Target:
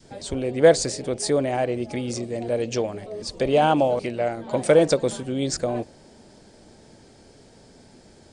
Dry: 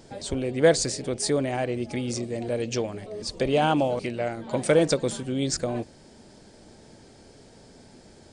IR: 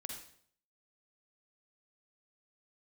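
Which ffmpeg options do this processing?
-af "adynamicequalizer=threshold=0.0224:dfrequency=630:dqfactor=0.89:tfrequency=630:tqfactor=0.89:attack=5:release=100:ratio=0.375:range=2.5:mode=boostabove:tftype=bell"

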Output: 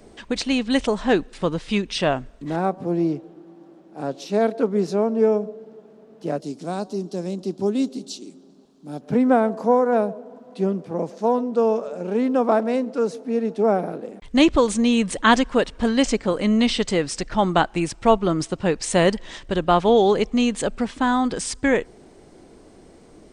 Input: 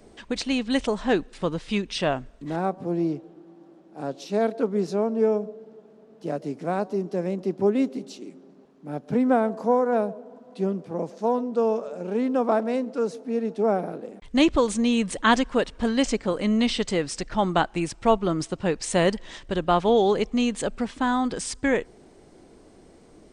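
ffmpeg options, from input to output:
-filter_complex "[0:a]asettb=1/sr,asplit=3[a][b][c];[a]atrim=end=6.404[d];[b]atrim=start=6.4:end=9.01,asetpts=PTS-STARTPTS,afade=t=in:d=0.004:c=qsin,afade=t=out:st=2.606:d=0.004:c=qsin,equalizer=f=125:t=o:w=1:g=-5,equalizer=f=500:t=o:w=1:g=-6,equalizer=f=1k:t=o:w=1:g=-3,equalizer=f=2k:t=o:w=1:g=-11,equalizer=f=4k:t=o:w=1:g=7,equalizer=f=8k:t=o:w=1:g=6[e];[c]atrim=start=9.006[f];[d][e]acrossfade=d=0.004:c1=hsin:c2=qsin[g];[g][f]acrossfade=d=0.004:c1=qsin:c2=hsin,volume=3.5dB"

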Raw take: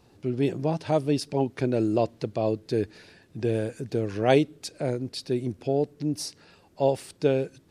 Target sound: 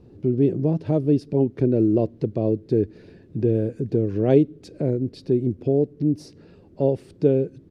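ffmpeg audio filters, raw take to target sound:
-filter_complex "[0:a]firequalizer=gain_entry='entry(390,0);entry(790,-15);entry(8500,-25)':delay=0.05:min_phase=1,asplit=2[a][b];[b]acompressor=threshold=-36dB:ratio=6,volume=0.5dB[c];[a][c]amix=inputs=2:normalize=0,volume=4.5dB"

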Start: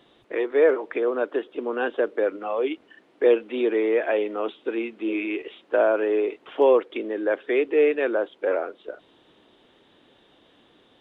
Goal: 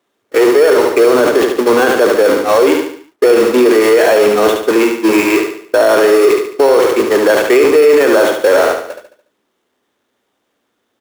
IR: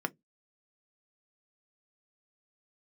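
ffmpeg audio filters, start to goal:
-filter_complex "[0:a]aeval=exprs='val(0)+0.5*0.075*sgn(val(0))':c=same,agate=range=-54dB:threshold=-23dB:ratio=16:detection=peak,highpass=90,asplit=2[a][b];[b]acrusher=samples=9:mix=1:aa=0.000001,volume=-5dB[c];[a][c]amix=inputs=2:normalize=0,asoftclip=type=hard:threshold=-6.5dB,aecho=1:1:72|144|216|288|360:0.501|0.216|0.0927|0.0398|0.0171,asplit=2[d][e];[1:a]atrim=start_sample=2205[f];[e][f]afir=irnorm=-1:irlink=0,volume=-13.5dB[g];[d][g]amix=inputs=2:normalize=0,alimiter=level_in=10.5dB:limit=-1dB:release=50:level=0:latency=1,volume=-1dB"

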